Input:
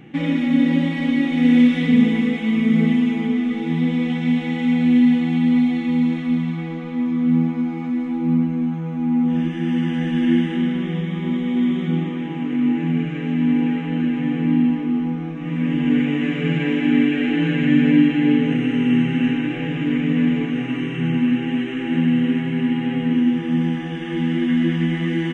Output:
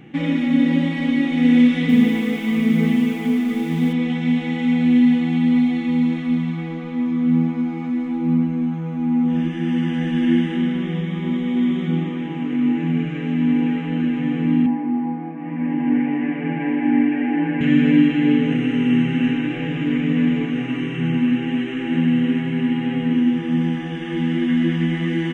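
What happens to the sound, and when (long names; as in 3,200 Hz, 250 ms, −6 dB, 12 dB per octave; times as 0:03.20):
0:01.63–0:03.93: feedback echo at a low word length 259 ms, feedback 35%, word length 6 bits, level −10 dB
0:14.66–0:17.61: loudspeaker in its box 230–2,100 Hz, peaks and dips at 270 Hz +3 dB, 440 Hz −6 dB, 860 Hz +10 dB, 1,300 Hz −10 dB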